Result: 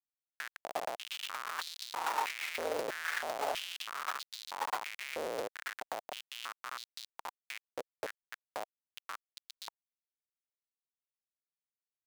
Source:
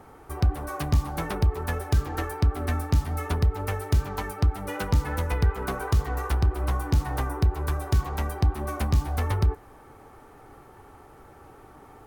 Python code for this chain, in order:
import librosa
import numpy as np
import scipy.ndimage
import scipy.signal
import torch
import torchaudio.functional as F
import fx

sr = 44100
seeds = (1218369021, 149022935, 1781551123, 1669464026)

y = fx.doppler_pass(x, sr, speed_mps=20, closest_m=18.0, pass_at_s=2.9)
y = fx.schmitt(y, sr, flips_db=-34.0)
y = fx.filter_held_highpass(y, sr, hz=3.1, low_hz=510.0, high_hz=4000.0)
y = y * 10.0 ** (-1.0 / 20.0)